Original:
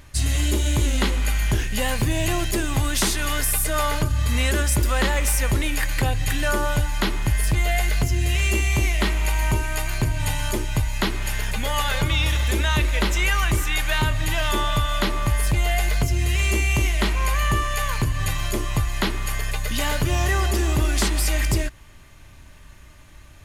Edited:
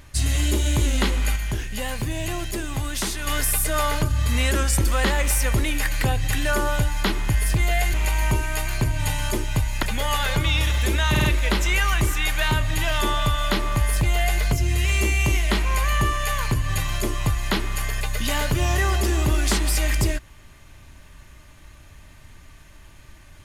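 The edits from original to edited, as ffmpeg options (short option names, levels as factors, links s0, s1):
-filter_complex "[0:a]asplit=10[s0][s1][s2][s3][s4][s5][s6][s7][s8][s9];[s0]atrim=end=1.362[s10];[s1]atrim=start=1.358:end=3.272,asetpts=PTS-STARTPTS,volume=0.562[s11];[s2]atrim=start=3.268:end=4.554[s12];[s3]atrim=start=4.55:end=4.89,asetpts=PTS-STARTPTS,asetrate=41013,aresample=44100[s13];[s4]atrim=start=4.886:end=7.912[s14];[s5]atrim=start=9.138:end=11.032[s15];[s6]atrim=start=11.478:end=12.802[s16];[s7]atrim=start=12.748:end=12.802[s17];[s8]atrim=start=12.748:end=12.802[s18];[s9]atrim=start=12.748[s19];[s10][s11]acrossfade=d=0.004:c1=hsin:c2=hsin[s20];[s20][s12]acrossfade=d=0.004:c1=hsin:c2=hsin[s21];[s21][s13]acrossfade=d=0.004:c1=hsin:c2=hsin[s22];[s22][s14]acrossfade=d=0.004:c1=hsin:c2=hsin[s23];[s23][s15]acrossfade=d=0.004:c1=hsin:c2=hsin[s24];[s24][s16]acrossfade=d=0.004:c1=hsin:c2=hsin[s25];[s25][s17]acrossfade=d=0.004:c1=hsin:c2=hsin[s26];[s26][s18]acrossfade=d=0.004:c1=hsin:c2=hsin[s27];[s27][s19]acrossfade=d=0.004:c1=hsin:c2=hsin"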